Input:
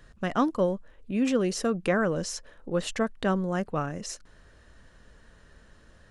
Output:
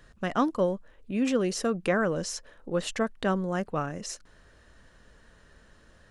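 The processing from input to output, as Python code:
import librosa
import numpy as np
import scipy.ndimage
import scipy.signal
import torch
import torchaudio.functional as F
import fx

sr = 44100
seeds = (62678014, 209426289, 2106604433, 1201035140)

y = fx.low_shelf(x, sr, hz=200.0, db=-3.0)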